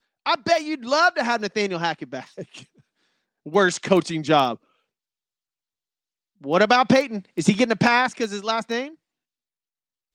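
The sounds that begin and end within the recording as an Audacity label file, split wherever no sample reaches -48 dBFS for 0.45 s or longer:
3.460000	4.560000	sound
6.410000	8.950000	sound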